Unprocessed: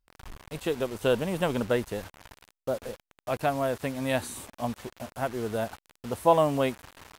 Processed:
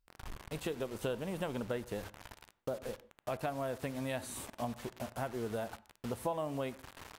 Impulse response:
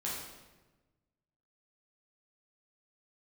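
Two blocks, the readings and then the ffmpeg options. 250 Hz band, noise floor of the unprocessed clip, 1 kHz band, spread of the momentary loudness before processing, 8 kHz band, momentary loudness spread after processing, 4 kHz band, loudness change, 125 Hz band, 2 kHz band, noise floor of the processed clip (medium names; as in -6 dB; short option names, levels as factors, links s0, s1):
-9.0 dB, under -85 dBFS, -11.5 dB, 17 LU, -6.0 dB, 9 LU, -9.0 dB, -10.5 dB, -8.0 dB, -9.5 dB, -78 dBFS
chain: -filter_complex "[0:a]acompressor=threshold=0.02:ratio=4,asplit=2[s0][s1];[s1]aemphasis=mode=reproduction:type=75kf[s2];[1:a]atrim=start_sample=2205,afade=t=out:st=0.19:d=0.01,atrim=end_sample=8820,asetrate=37485,aresample=44100[s3];[s2][s3]afir=irnorm=-1:irlink=0,volume=0.141[s4];[s0][s4]amix=inputs=2:normalize=0,volume=0.794"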